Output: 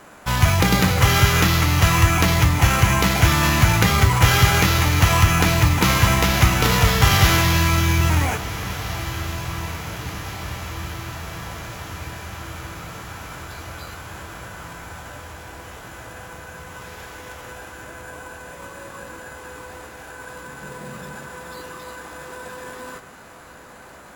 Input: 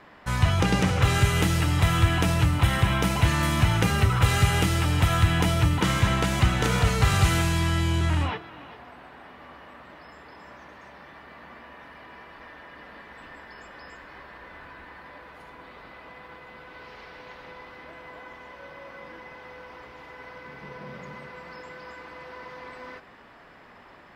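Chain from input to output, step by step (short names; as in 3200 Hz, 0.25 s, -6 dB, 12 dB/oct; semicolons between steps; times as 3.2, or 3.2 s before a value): high shelf 3200 Hz +9.5 dB; sample-and-hold 4×; on a send: diffused feedback echo 1.755 s, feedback 65%, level -14 dB; on the sum: formant shift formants -4 st; gain +4.5 dB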